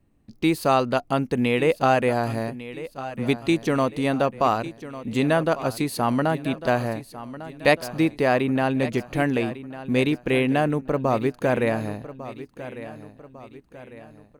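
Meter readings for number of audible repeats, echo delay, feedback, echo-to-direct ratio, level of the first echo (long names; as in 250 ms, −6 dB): 3, 1,150 ms, 45%, −13.5 dB, −14.5 dB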